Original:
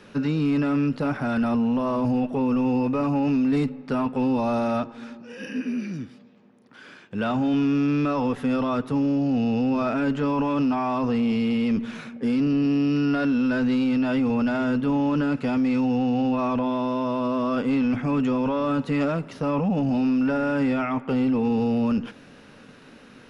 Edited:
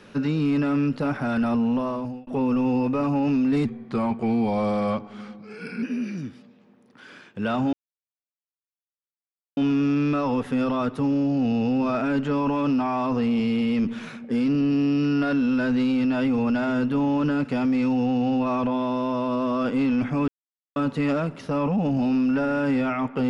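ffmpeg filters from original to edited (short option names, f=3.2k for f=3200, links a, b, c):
-filter_complex "[0:a]asplit=7[a][b][c][d][e][f][g];[a]atrim=end=2.27,asetpts=PTS-STARTPTS,afade=t=out:st=1.76:d=0.51[h];[b]atrim=start=2.27:end=3.654,asetpts=PTS-STARTPTS,afade=t=in:d=0.004:c=hsin[i];[c]atrim=start=3.65:end=5.59,asetpts=PTS-STARTPTS,asetrate=39249,aresample=44100,atrim=end_sample=96128,asetpts=PTS-STARTPTS[j];[d]atrim=start=5.586:end=7.49,asetpts=PTS-STARTPTS,afade=t=out:st=1.9:d=0.004:c=hsin,apad=pad_dur=1.84[k];[e]atrim=start=7.49:end=18.2,asetpts=PTS-STARTPTS,afade=t=in:d=0.004:c=hsin,afade=t=out:st=10.706:d=0.004:c=hsin[l];[f]atrim=start=18.2:end=18.68,asetpts=PTS-STARTPTS,volume=0[m];[g]atrim=start=18.68,asetpts=PTS-STARTPTS,afade=t=in:d=0.004:c=hsin[n];[h][i]concat=n=2:v=0:a=1[o];[o][j]acrossfade=d=0.004:c1=hsin:c2=hsin[p];[k][l][m][n]concat=n=4:v=0:a=1[q];[p][q]acrossfade=d=0.004:c1=hsin:c2=hsin"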